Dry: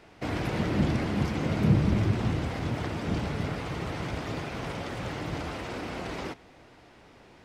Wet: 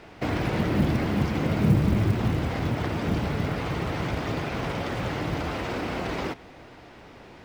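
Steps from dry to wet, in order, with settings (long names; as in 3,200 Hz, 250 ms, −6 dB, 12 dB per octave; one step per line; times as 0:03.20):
in parallel at +2 dB: downward compressor, threshold −34 dBFS, peak gain reduction 16 dB
on the sum: high-shelf EQ 7,700 Hz −9.5 dB
floating-point word with a short mantissa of 4 bits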